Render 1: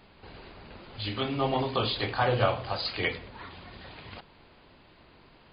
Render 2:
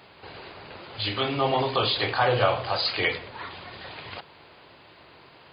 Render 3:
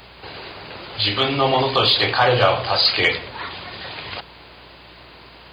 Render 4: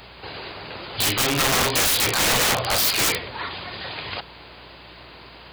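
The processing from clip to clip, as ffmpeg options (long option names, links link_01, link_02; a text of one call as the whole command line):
ffmpeg -i in.wav -filter_complex "[0:a]highpass=120,equalizer=frequency=220:width_type=o:width=0.95:gain=-9,asplit=2[link_01][link_02];[link_02]alimiter=level_in=1dB:limit=-24dB:level=0:latency=1:release=19,volume=-1dB,volume=-0.5dB[link_03];[link_01][link_03]amix=inputs=2:normalize=0,volume=1.5dB" out.wav
ffmpeg -i in.wav -af "aeval=exprs='val(0)+0.00141*(sin(2*PI*60*n/s)+sin(2*PI*2*60*n/s)/2+sin(2*PI*3*60*n/s)/3+sin(2*PI*4*60*n/s)/4+sin(2*PI*5*60*n/s)/5)':channel_layout=same,acontrast=49,highshelf=frequency=4100:gain=8.5" out.wav
ffmpeg -i in.wav -af "aeval=exprs='(mod(5.31*val(0)+1,2)-1)/5.31':channel_layout=same" out.wav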